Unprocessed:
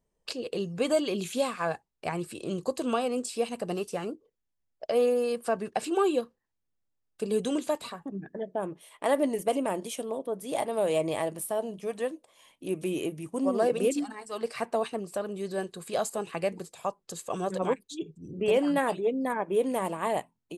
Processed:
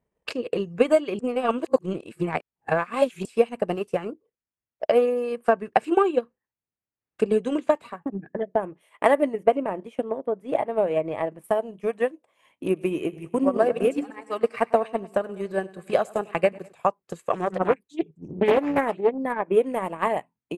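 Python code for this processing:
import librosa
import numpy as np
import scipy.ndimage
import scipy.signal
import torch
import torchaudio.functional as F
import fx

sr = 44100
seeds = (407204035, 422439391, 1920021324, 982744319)

y = fx.lowpass(x, sr, hz=8800.0, slope=12, at=(6.0, 7.82))
y = fx.lowpass(y, sr, hz=1900.0, slope=6, at=(9.33, 11.44))
y = fx.echo_feedback(y, sr, ms=100, feedback_pct=53, wet_db=-13.5, at=(12.65, 16.73))
y = fx.doppler_dist(y, sr, depth_ms=0.42, at=(17.31, 19.18))
y = fx.edit(y, sr, fx.reverse_span(start_s=1.19, length_s=2.06), tone=tone)
y = scipy.signal.sosfilt(scipy.signal.butter(2, 55.0, 'highpass', fs=sr, output='sos'), y)
y = fx.high_shelf_res(y, sr, hz=3100.0, db=-9.0, q=1.5)
y = fx.transient(y, sr, attack_db=9, sustain_db=-6)
y = y * 10.0 ** (1.5 / 20.0)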